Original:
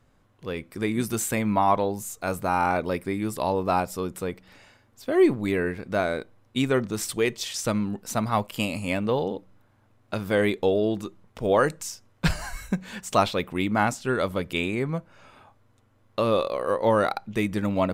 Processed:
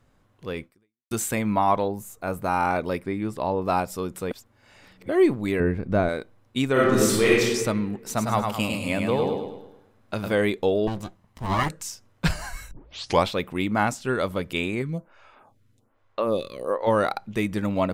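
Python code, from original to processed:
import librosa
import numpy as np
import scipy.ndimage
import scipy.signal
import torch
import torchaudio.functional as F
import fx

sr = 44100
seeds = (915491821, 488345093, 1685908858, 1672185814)

y = fx.peak_eq(x, sr, hz=5500.0, db=-9.5, octaves=2.3, at=(1.88, 2.44))
y = fx.lowpass(y, sr, hz=fx.line((2.99, 3200.0), (3.61, 1700.0)), slope=6, at=(2.99, 3.61), fade=0.02)
y = fx.tilt_eq(y, sr, slope=-3.0, at=(5.6, 6.09))
y = fx.reverb_throw(y, sr, start_s=6.72, length_s=0.69, rt60_s=1.3, drr_db=-7.5)
y = fx.echo_feedback(y, sr, ms=105, feedback_pct=46, wet_db=-4.5, at=(7.96, 10.33))
y = fx.lower_of_two(y, sr, delay_ms=1.0, at=(10.87, 11.69))
y = fx.stagger_phaser(y, sr, hz=1.2, at=(14.81, 16.86), fade=0.02)
y = fx.edit(y, sr, fx.fade_out_span(start_s=0.64, length_s=0.47, curve='exp'),
    fx.reverse_span(start_s=4.31, length_s=0.78),
    fx.tape_start(start_s=12.71, length_s=0.56), tone=tone)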